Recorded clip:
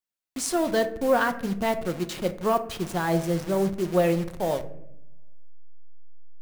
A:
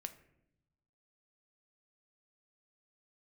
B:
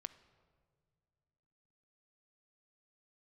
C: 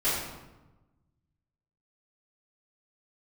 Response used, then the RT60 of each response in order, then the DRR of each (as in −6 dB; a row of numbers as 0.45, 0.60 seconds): A; 0.80 s, non-exponential decay, 1.1 s; 8.0, 11.5, −13.5 decibels